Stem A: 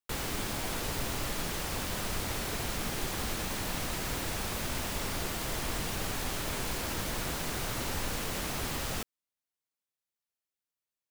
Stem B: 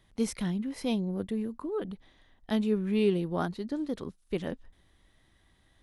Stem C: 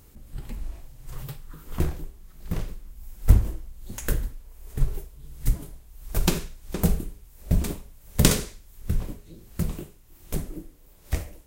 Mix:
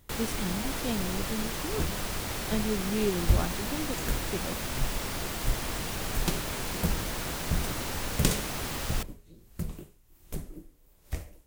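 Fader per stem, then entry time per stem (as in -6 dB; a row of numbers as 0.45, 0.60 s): +0.5, -3.0, -7.5 dB; 0.00, 0.00, 0.00 s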